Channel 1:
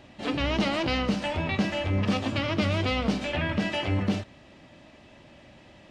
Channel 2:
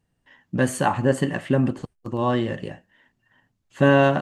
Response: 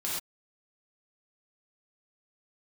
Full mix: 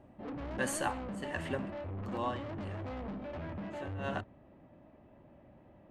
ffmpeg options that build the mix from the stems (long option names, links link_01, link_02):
-filter_complex "[0:a]lowpass=1000,asoftclip=type=tanh:threshold=-32.5dB,volume=-5.5dB[link_01];[1:a]highpass=frequency=870:poles=1,tremolo=f=1.4:d=0.99,volume=-6dB,asplit=2[link_02][link_03];[link_03]volume=-21.5dB[link_04];[2:a]atrim=start_sample=2205[link_05];[link_04][link_05]afir=irnorm=-1:irlink=0[link_06];[link_01][link_02][link_06]amix=inputs=3:normalize=0"